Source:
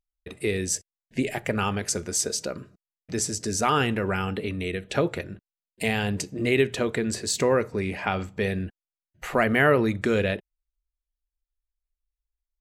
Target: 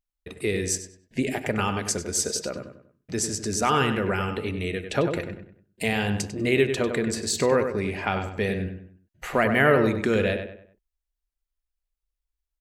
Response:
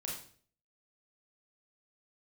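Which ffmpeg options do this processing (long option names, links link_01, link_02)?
-filter_complex "[0:a]asplit=2[link_01][link_02];[link_02]adelay=97,lowpass=frequency=2900:poles=1,volume=-7dB,asplit=2[link_03][link_04];[link_04]adelay=97,lowpass=frequency=2900:poles=1,volume=0.38,asplit=2[link_05][link_06];[link_06]adelay=97,lowpass=frequency=2900:poles=1,volume=0.38,asplit=2[link_07][link_08];[link_08]adelay=97,lowpass=frequency=2900:poles=1,volume=0.38[link_09];[link_01][link_03][link_05][link_07][link_09]amix=inputs=5:normalize=0"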